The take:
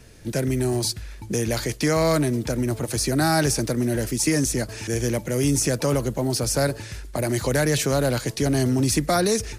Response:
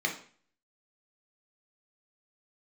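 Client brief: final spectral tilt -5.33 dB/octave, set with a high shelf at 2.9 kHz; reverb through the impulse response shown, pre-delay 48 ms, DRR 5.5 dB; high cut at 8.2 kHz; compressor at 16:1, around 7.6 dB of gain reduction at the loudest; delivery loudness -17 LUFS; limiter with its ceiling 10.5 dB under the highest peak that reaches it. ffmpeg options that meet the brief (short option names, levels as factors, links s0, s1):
-filter_complex "[0:a]lowpass=8200,highshelf=f=2900:g=-6.5,acompressor=threshold=0.0631:ratio=16,alimiter=level_in=1.06:limit=0.0631:level=0:latency=1,volume=0.944,asplit=2[s0][s1];[1:a]atrim=start_sample=2205,adelay=48[s2];[s1][s2]afir=irnorm=-1:irlink=0,volume=0.211[s3];[s0][s3]amix=inputs=2:normalize=0,volume=5.96"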